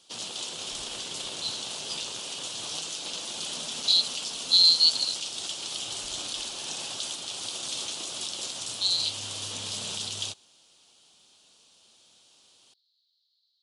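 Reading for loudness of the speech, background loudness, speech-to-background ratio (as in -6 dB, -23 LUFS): -21.5 LUFS, -32.5 LUFS, 11.0 dB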